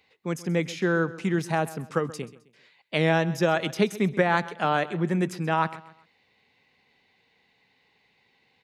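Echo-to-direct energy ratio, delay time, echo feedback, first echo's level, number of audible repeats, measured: -17.0 dB, 131 ms, 35%, -17.5 dB, 2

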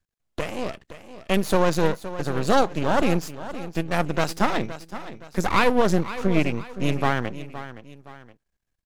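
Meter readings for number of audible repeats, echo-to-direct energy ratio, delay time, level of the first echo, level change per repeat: 2, -13.0 dB, 518 ms, -13.5 dB, -8.0 dB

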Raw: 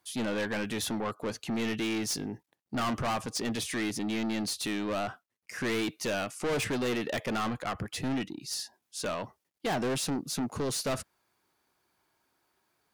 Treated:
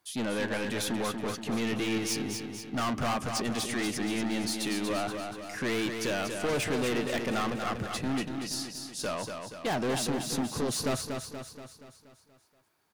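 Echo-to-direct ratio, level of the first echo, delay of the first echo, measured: -4.5 dB, -6.0 dB, 238 ms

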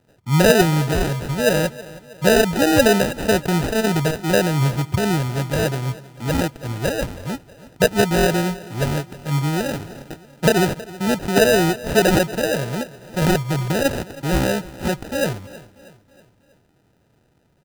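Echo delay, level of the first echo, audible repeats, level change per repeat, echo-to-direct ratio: 320 ms, -19.0 dB, 3, -6.0 dB, -18.0 dB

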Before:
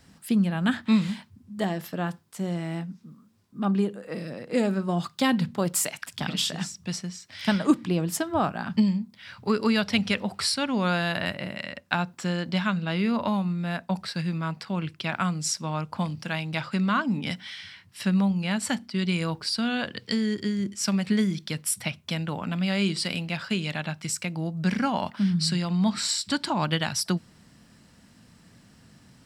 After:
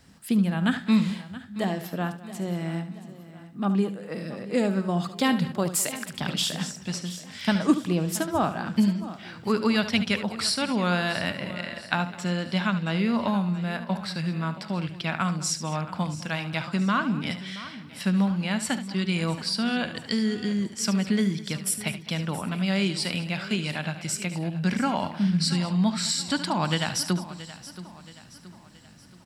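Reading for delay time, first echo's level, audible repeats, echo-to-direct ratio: 73 ms, -12.0 dB, 8, -9.5 dB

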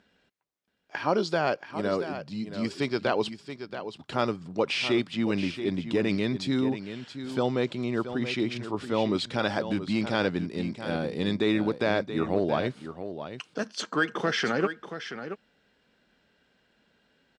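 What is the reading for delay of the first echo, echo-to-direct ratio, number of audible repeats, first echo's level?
678 ms, -10.5 dB, 1, -10.5 dB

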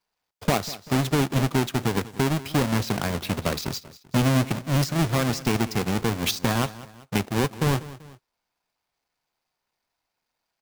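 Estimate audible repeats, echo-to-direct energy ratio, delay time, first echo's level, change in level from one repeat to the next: 2, -16.5 dB, 193 ms, -17.5 dB, -6.5 dB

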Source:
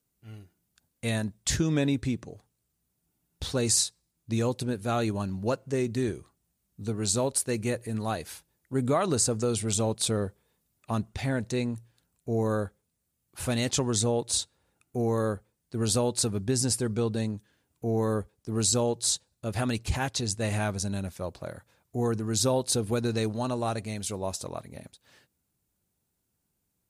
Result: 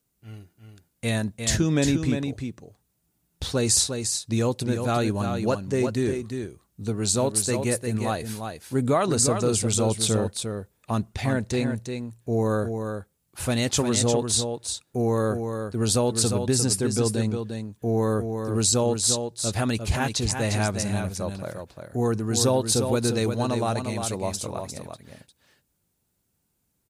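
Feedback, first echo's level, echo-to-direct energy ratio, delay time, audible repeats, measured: no regular repeats, -6.5 dB, -6.5 dB, 352 ms, 1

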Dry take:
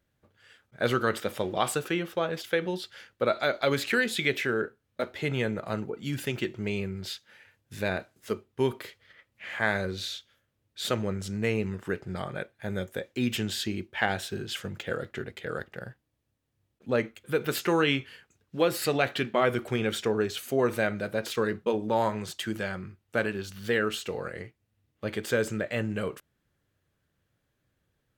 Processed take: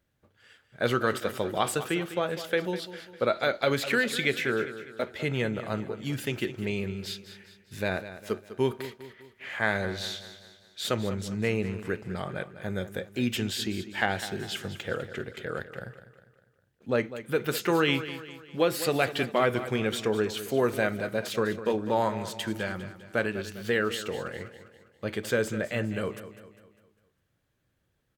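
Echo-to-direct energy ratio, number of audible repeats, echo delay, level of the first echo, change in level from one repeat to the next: -12.0 dB, 4, 201 ms, -13.0 dB, -6.5 dB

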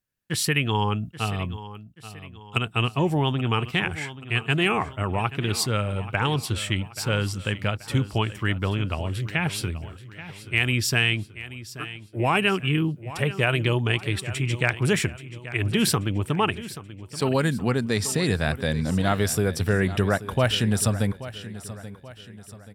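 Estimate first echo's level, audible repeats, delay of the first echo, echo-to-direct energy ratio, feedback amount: -15.0 dB, 3, 831 ms, -14.0 dB, 45%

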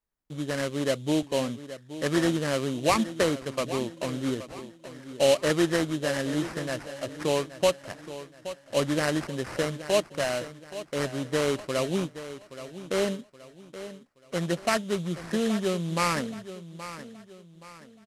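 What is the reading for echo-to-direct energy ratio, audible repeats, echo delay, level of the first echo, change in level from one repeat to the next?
-13.0 dB, 3, 824 ms, -13.5 dB, -8.5 dB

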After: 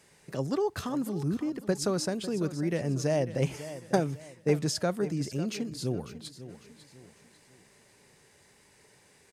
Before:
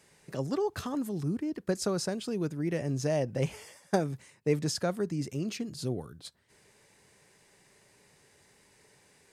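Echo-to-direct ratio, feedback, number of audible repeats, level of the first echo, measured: -13.5 dB, 38%, 3, -14.0 dB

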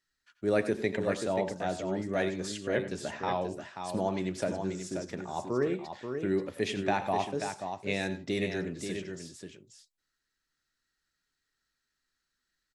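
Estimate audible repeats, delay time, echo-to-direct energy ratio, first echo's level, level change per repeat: 2, 86 ms, -6.0 dB, -15.0 dB, no regular repeats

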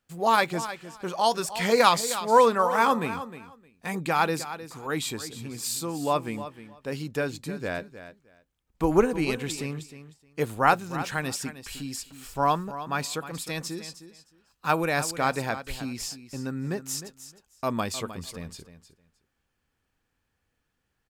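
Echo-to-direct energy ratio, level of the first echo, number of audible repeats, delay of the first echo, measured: -13.0 dB, -13.0 dB, 2, 309 ms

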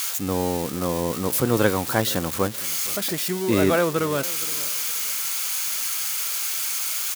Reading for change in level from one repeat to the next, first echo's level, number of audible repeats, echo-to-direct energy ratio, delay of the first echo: -10.5 dB, -19.0 dB, 2, -18.5 dB, 466 ms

